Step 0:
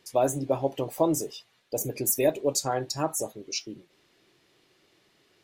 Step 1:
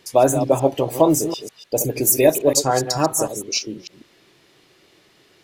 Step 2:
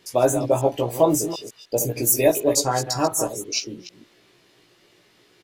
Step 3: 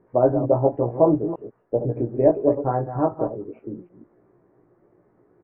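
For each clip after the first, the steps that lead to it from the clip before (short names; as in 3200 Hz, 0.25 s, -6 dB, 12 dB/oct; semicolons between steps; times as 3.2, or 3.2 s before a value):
reverse delay 0.149 s, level -9.5 dB; gain +9 dB
doubler 17 ms -3 dB; gain -4 dB
Gaussian blur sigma 7.8 samples; gain +2.5 dB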